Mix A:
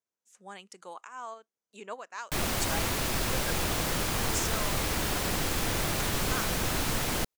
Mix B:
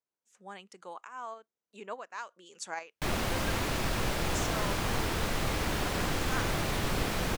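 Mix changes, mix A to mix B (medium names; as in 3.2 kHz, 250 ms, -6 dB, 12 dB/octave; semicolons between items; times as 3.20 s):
background: entry +0.70 s; master: add treble shelf 5.5 kHz -10 dB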